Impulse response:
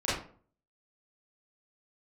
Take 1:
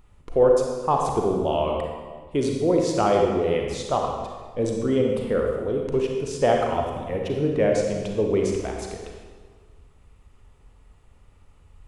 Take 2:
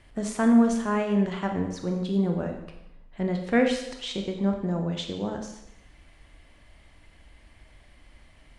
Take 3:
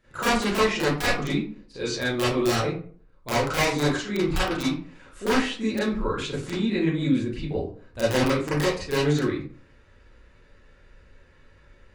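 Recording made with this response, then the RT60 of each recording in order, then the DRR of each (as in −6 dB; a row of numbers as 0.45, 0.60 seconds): 3; 1.6, 0.90, 0.45 seconds; 0.5, 3.0, −11.5 decibels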